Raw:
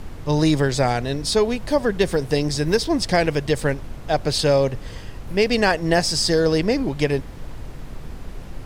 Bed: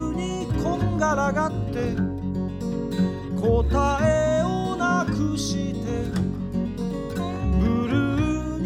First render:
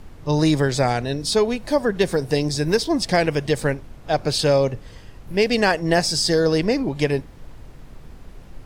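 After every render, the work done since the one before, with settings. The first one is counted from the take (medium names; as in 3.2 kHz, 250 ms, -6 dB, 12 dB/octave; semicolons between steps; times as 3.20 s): noise print and reduce 7 dB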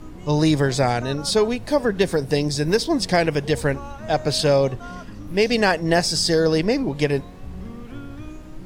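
add bed -15 dB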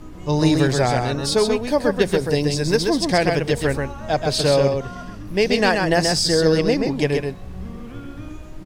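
delay 131 ms -4.5 dB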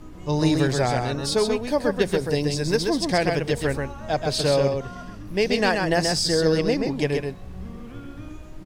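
trim -3.5 dB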